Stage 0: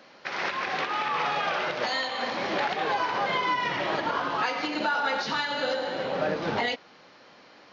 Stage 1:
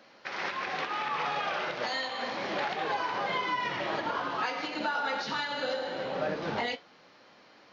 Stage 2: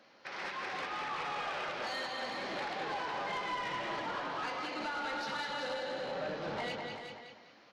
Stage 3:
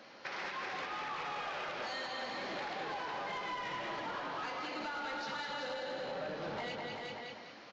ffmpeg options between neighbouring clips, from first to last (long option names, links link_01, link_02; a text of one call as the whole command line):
ffmpeg -i in.wav -af "flanger=delay=8.9:depth=6.7:regen=-67:speed=0.26:shape=sinusoidal" out.wav
ffmpeg -i in.wav -filter_complex "[0:a]asplit=2[link_01][link_02];[link_02]aecho=0:1:202|404|606|808:0.501|0.15|0.0451|0.0135[link_03];[link_01][link_03]amix=inputs=2:normalize=0,asoftclip=type=tanh:threshold=-27dB,asplit=2[link_04][link_05];[link_05]aecho=0:1:377:0.398[link_06];[link_04][link_06]amix=inputs=2:normalize=0,volume=-5dB" out.wav
ffmpeg -i in.wav -af "acompressor=threshold=-48dB:ratio=3,aresample=16000,aresample=44100,volume=7dB" out.wav